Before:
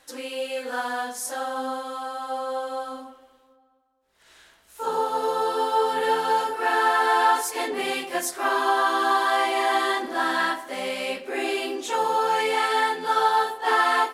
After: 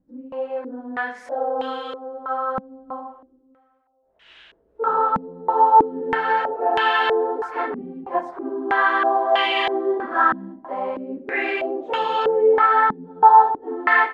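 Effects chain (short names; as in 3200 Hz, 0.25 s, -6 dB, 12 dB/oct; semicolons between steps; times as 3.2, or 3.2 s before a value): 1.37–1.92 whine 490 Hz -35 dBFS; stepped low-pass 3.1 Hz 210–2900 Hz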